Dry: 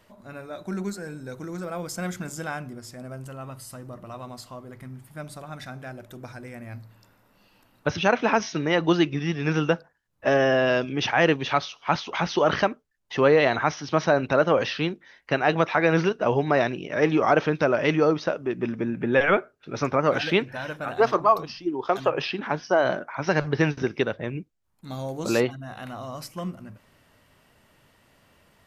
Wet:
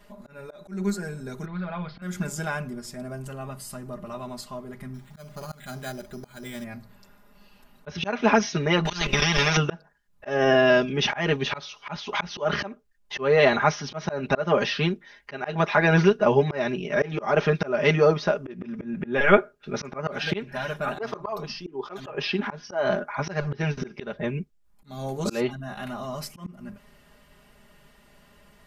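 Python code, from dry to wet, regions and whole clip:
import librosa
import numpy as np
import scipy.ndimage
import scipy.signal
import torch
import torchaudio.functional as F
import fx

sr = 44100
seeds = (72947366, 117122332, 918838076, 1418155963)

y = fx.chain(x, sr, fx.steep_lowpass(hz=4300.0, slope=72),
    fx.peak_eq(hz=330.0, db=-13.0, octaves=0.93),
    fx.doubler(ms=39.0, db=-14), at=(1.45, 2.02))
y = fx.chain(y, sr, fx.high_shelf(hz=3400.0, db=12.0),
    fx.resample_bad(factor=8, down='filtered', up='hold'), at=(4.94, 6.64))
y = fx.chain(y, sr, fx.peak_eq(hz=170.0, db=12.0, octaves=0.58),
    fx.level_steps(step_db=13),
    fx.spectral_comp(ratio=4.0), at=(8.85, 9.57))
y = fx.low_shelf(y, sr, hz=77.0, db=10.0)
y = y + 0.88 * np.pad(y, (int(4.9 * sr / 1000.0), 0))[:len(y)]
y = fx.auto_swell(y, sr, attack_ms=234.0)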